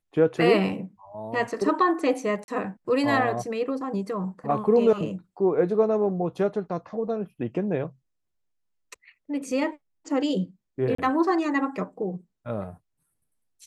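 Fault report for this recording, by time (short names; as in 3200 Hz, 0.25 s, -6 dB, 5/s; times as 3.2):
2.44–2.48 gap 41 ms
10.95–10.98 gap 34 ms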